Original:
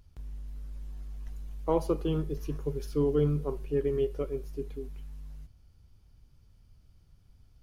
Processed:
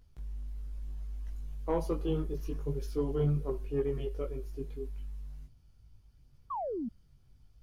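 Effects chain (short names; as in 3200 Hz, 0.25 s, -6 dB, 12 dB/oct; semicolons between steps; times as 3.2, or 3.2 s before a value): chorus voices 4, 0.57 Hz, delay 19 ms, depth 4.2 ms; painted sound fall, 6.5–6.89, 210–1200 Hz -35 dBFS; soft clip -19.5 dBFS, distortion -22 dB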